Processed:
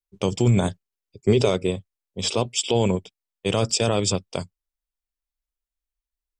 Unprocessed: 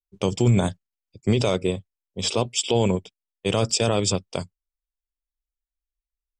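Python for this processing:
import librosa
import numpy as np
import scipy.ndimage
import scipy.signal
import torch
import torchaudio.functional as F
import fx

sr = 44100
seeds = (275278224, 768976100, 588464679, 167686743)

y = fx.peak_eq(x, sr, hz=410.0, db=9.5, octaves=0.27, at=(0.65, 1.51))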